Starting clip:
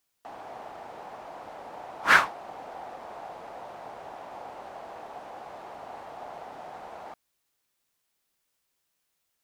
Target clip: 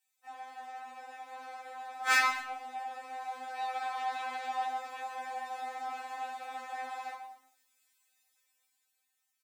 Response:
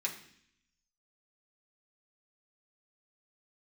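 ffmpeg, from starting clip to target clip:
-filter_complex "[0:a]asettb=1/sr,asplit=3[a][b][c];[a]atrim=end=3.574[d];[b]atrim=start=3.57:end=4.65,asetpts=PTS-STARTPTS,afade=t=in:d=0.004:c=qsin,afade=t=out:st=1.076:d=0.004:c=qsin,equalizer=f=1k:t=o:w=1:g=4,equalizer=f=2k:t=o:w=1:g=4,equalizer=f=4k:t=o:w=1:g=7[e];[c]atrim=start=4.646[f];[d][e]acrossfade=d=0.004:c1=hsin:c2=qsin[g];[g][f]acrossfade=d=0.004:c1=qsin:c2=hsin,acrossover=split=300|4400[h][i][j];[h]acrusher=bits=5:dc=4:mix=0:aa=0.000001[k];[j]equalizer=f=12k:w=0.6:g=3[l];[k][i][l]amix=inputs=3:normalize=0,dynaudnorm=f=180:g=13:m=7dB,asoftclip=type=hard:threshold=-18.5dB,aecho=1:1:133|223:0.2|0.112[m];[1:a]atrim=start_sample=2205,afade=t=out:st=0.38:d=0.01,atrim=end_sample=17199[n];[m][n]afir=irnorm=-1:irlink=0,flanger=delay=16.5:depth=6.7:speed=1.1,afftfilt=real='re*3.46*eq(mod(b,12),0)':imag='im*3.46*eq(mod(b,12),0)':win_size=2048:overlap=0.75"

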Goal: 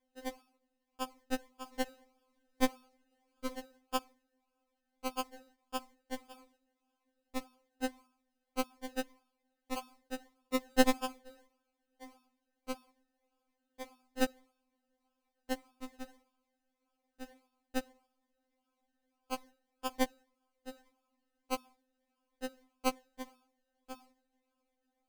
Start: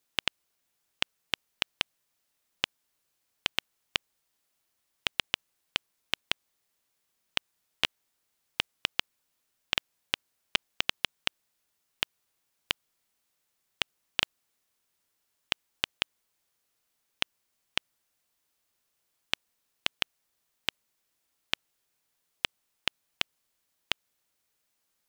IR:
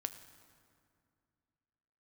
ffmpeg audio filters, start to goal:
-filter_complex "[0:a]bandreject=f=342:t=h:w=4,bandreject=f=684:t=h:w=4,bandreject=f=1.026k:t=h:w=4,bandreject=f=1.368k:t=h:w=4,bandreject=f=1.71k:t=h:w=4,bandreject=f=2.052k:t=h:w=4,bandreject=f=2.394k:t=h:w=4,bandreject=f=2.736k:t=h:w=4,bandreject=f=3.078k:t=h:w=4,bandreject=f=3.42k:t=h:w=4,bandreject=f=3.762k:t=h:w=4,bandreject=f=4.104k:t=h:w=4,bandreject=f=4.446k:t=h:w=4,asettb=1/sr,asplit=3[a][b][c];[a]atrim=end=1.734[d];[b]atrim=start=1.73:end=3.56,asetpts=PTS-STARTPTS,afade=t=in:d=0.004:c=qsin,afade=t=out:st=1.826:d=0.004:c=qsin,acontrast=76[e];[c]atrim=start=3.556[f];[d][e]acrossfade=d=0.004:c1=hsin:c2=qsin[g];[g][f]acrossfade=d=0.004:c1=qsin:c2=hsin,asettb=1/sr,asplit=3[h][i][j];[h]atrim=end=10.704[k];[i]atrim=start=10.7:end=11.18,asetpts=PTS-STARTPTS,afade=t=in:d=0.004:c=qsin,afade=t=out:st=0.476:d=0.004:c=qsin,equalizer=f=4.8k:w=0.33:g=8.5[l];[j]atrim=start=11.176[m];[k][l]acrossfade=d=0.004:c1=hsin:c2=qsin[n];[n][m]acrossfade=d=0.004:c1=qsin:c2=hsin,acrusher=samples=31:mix=1:aa=0.000001:lfo=1:lforange=18.6:lforate=1.7,afftfilt=real='re*3.46*eq(mod(b,12),0)':imag='im*3.46*eq(mod(b,12),0)':win_size=2048:overlap=0.75,volume=-2dB"

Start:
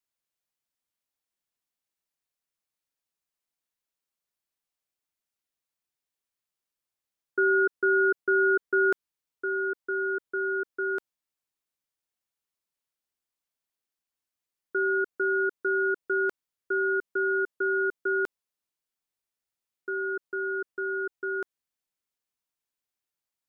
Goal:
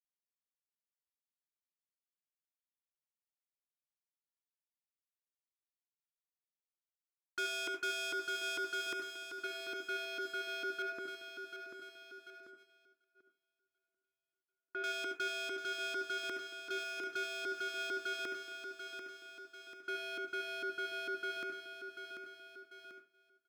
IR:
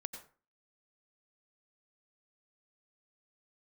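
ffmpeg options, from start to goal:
-filter_complex "[0:a]asuperstop=centerf=660:order=12:qfactor=0.9,volume=33dB,asoftclip=hard,volume=-33dB,asettb=1/sr,asplit=3[a][b][c];[a]atrim=end=10.824[d];[b]atrim=start=10.82:end=14.84,asetpts=PTS-STARTPTS,afade=t=in:d=0.004:c=qsin,afade=t=out:st=4.016:d=0.004:c=qsin,lowpass=1.5k[e];[c]atrim=start=14.836[f];[d][e]acrossfade=d=0.004:c1=hsin:c2=qsin[g];[g][f]acrossfade=d=0.004:c1=qsin:c2=hsin,aecho=1:1:740|1480|2220|2960|3700:0.282|0.144|0.0733|0.0374|0.0191,alimiter=level_in=11dB:limit=-24dB:level=0:latency=1,volume=-11dB,lowshelf=f=130:g=-8,agate=range=-23dB:threshold=-57dB:ratio=16:detection=peak[h];[1:a]atrim=start_sample=2205,asetrate=57330,aresample=44100[i];[h][i]afir=irnorm=-1:irlink=0,volume=6dB"

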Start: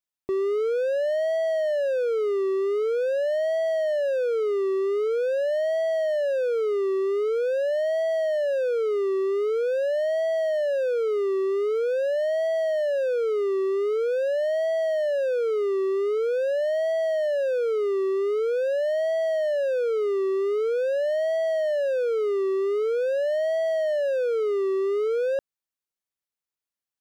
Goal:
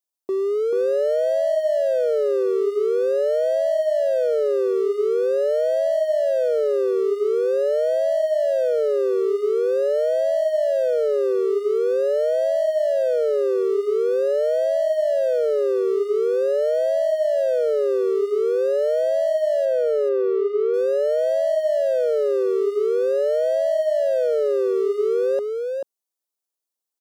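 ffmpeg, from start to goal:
-filter_complex "[0:a]highpass=350,equalizer=f=2k:t=o:w=1.7:g=-12.5,asettb=1/sr,asplit=3[a][b][c];[a]atrim=end=19.654[d];[b]atrim=start=19.65:end=20.74,asetpts=PTS-STARTPTS,afade=t=in:d=0.004:c=qsin,afade=t=out:st=1.086:d=0.004:c=qsin,lowpass=2.8k[e];[c]atrim=start=20.736[f];[d][e]acrossfade=d=0.004:c1=hsin:c2=qsin[g];[g][f]acrossfade=d=0.004:c1=qsin:c2=hsin,aecho=1:1:437:0.596,volume=5.5dB"

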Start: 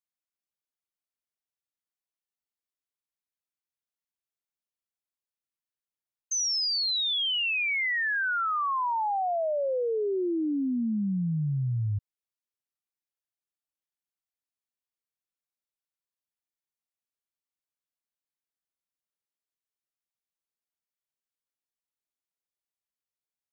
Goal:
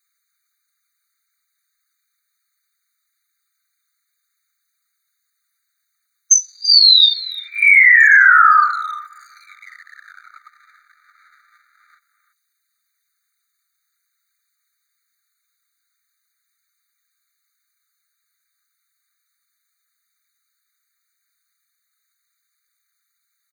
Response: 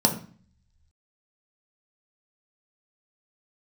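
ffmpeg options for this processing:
-filter_complex "[0:a]afftfilt=real='hypot(re,im)*cos(2*PI*random(0))':imag='hypot(re,im)*sin(2*PI*random(1))':win_size=512:overlap=0.75,asplit=2[a][b];[b]adelay=340,highpass=300,lowpass=3.4k,asoftclip=type=hard:threshold=-31.5dB,volume=-14dB[c];[a][c]amix=inputs=2:normalize=0,alimiter=level_in=31.5dB:limit=-1dB:release=50:level=0:latency=1,afftfilt=real='re*eq(mod(floor(b*sr/1024/1200),2),1)':imag='im*eq(mod(floor(b*sr/1024/1200),2),1)':win_size=1024:overlap=0.75,volume=-1dB"

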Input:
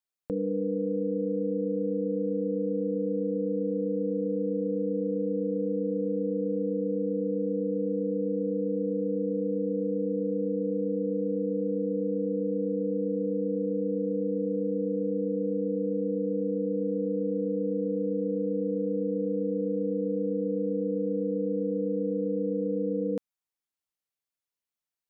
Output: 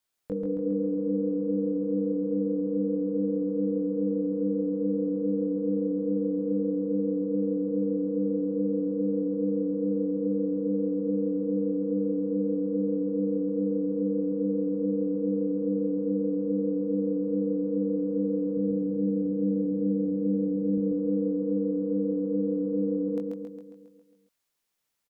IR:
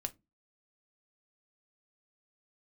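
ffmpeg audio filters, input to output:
-filter_complex "[0:a]acontrast=85,asettb=1/sr,asplit=3[a][b][c];[a]atrim=end=18.574[d];[b]atrim=start=18.57:end=20.78,asetpts=PTS-STARTPTS,afade=t=in:d=0.004:c=qsin,afade=t=out:st=2.206:d=0.004:c=qsin,equalizer=f=110:w=0.46:g=12.5[e];[c]atrim=start=20.776[f];[d][e]acrossfade=d=0.004:c1=hsin:c2=qsin[g];[g][f]acrossfade=d=0.004:c1=qsin:c2=hsin,alimiter=level_in=1dB:limit=-24dB:level=0:latency=1:release=131,volume=-1dB,flanger=delay=19:depth=2.3:speed=2.4,aecho=1:1:136|272|408|544|680|816|952|1088:0.668|0.388|0.225|0.13|0.0756|0.0439|0.0254|0.0148,volume=5dB"

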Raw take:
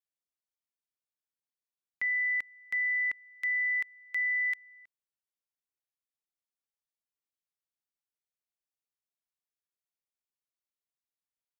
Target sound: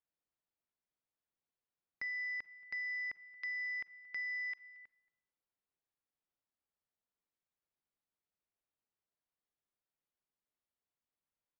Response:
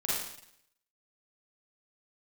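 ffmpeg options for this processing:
-filter_complex "[0:a]lowpass=f=1.1k:p=1,acompressor=threshold=-44dB:ratio=2.5,aresample=11025,asoftclip=type=tanh:threshold=-39.5dB,aresample=44100,aecho=1:1:227:0.0794,asplit=2[a][b];[1:a]atrim=start_sample=2205[c];[b][c]afir=irnorm=-1:irlink=0,volume=-25dB[d];[a][d]amix=inputs=2:normalize=0,volume=4.5dB"

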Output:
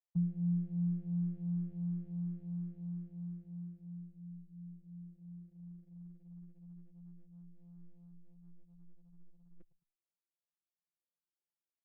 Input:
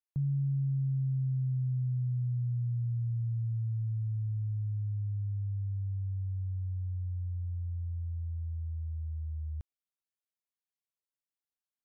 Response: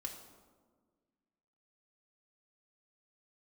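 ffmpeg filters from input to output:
-filter_complex "[0:a]bandpass=f=240:t=q:w=0.52:csg=0,afftfilt=real='hypot(re,im)*cos(PI*b)':imag='0':win_size=1024:overlap=0.75,aecho=1:1:107|214:0.0944|0.0236,asplit=2[a][b];[b]afreqshift=2.9[c];[a][c]amix=inputs=2:normalize=1,volume=4.5dB"

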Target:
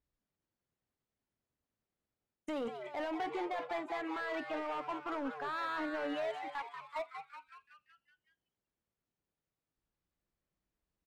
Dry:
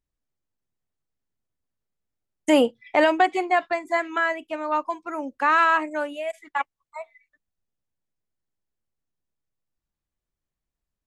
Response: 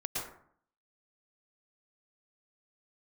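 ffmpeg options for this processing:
-filter_complex "[0:a]highpass=f=360:p=1,aemphasis=mode=reproduction:type=bsi,areverse,acompressor=threshold=-26dB:ratio=6,areverse,alimiter=level_in=4.5dB:limit=-24dB:level=0:latency=1:release=56,volume=-4.5dB,asoftclip=type=hard:threshold=-34dB,asplit=2[a][b];[b]asplit=7[c][d][e][f][g][h][i];[c]adelay=187,afreqshift=140,volume=-8dB[j];[d]adelay=374,afreqshift=280,volume=-13dB[k];[e]adelay=561,afreqshift=420,volume=-18.1dB[l];[f]adelay=748,afreqshift=560,volume=-23.1dB[m];[g]adelay=935,afreqshift=700,volume=-28.1dB[n];[h]adelay=1122,afreqshift=840,volume=-33.2dB[o];[i]adelay=1309,afreqshift=980,volume=-38.2dB[p];[j][k][l][m][n][o][p]amix=inputs=7:normalize=0[q];[a][q]amix=inputs=2:normalize=0,adynamicequalizer=threshold=0.001:dfrequency=6000:dqfactor=0.7:tfrequency=6000:tqfactor=0.7:attack=5:release=100:ratio=0.375:range=3:mode=cutabove:tftype=highshelf"

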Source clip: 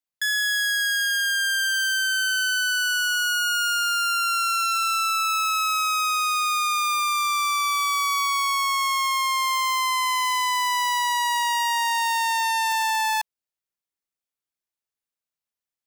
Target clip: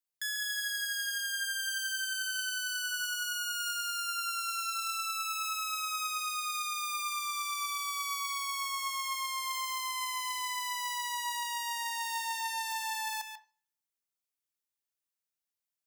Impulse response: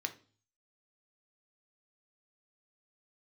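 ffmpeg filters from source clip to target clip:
-filter_complex "[0:a]highshelf=f=4.4k:g=7.5,alimiter=limit=-19dB:level=0:latency=1,asplit=2[a][b];[1:a]atrim=start_sample=2205,adelay=141[c];[b][c]afir=irnorm=-1:irlink=0,volume=-8.5dB[d];[a][d]amix=inputs=2:normalize=0,volume=-6.5dB"

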